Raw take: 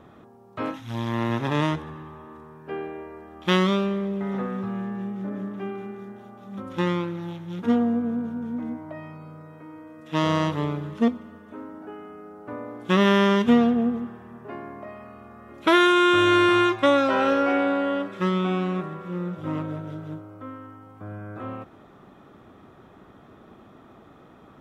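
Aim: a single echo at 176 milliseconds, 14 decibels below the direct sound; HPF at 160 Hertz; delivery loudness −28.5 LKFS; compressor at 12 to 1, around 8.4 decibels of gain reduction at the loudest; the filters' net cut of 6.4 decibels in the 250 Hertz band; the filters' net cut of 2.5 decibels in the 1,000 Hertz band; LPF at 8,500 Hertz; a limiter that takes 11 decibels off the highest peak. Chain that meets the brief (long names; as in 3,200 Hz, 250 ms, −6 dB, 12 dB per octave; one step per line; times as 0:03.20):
high-pass filter 160 Hz
low-pass filter 8,500 Hz
parametric band 250 Hz −7.5 dB
parametric band 1,000 Hz −3 dB
downward compressor 12 to 1, threshold −25 dBFS
brickwall limiter −23 dBFS
single-tap delay 176 ms −14 dB
level +6.5 dB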